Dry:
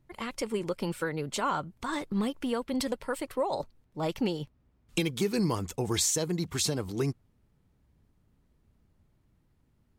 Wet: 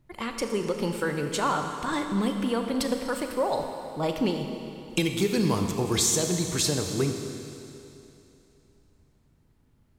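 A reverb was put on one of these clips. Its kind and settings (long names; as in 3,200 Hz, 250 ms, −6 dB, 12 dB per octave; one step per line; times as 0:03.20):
four-comb reverb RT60 2.9 s, combs from 27 ms, DRR 4.5 dB
level +3 dB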